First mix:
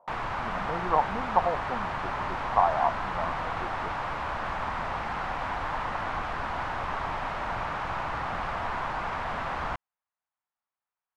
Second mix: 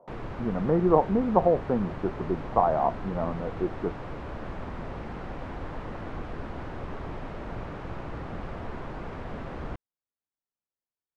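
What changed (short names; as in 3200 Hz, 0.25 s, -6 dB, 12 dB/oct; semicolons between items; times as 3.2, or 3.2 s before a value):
background -10.0 dB; master: add resonant low shelf 600 Hz +12 dB, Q 1.5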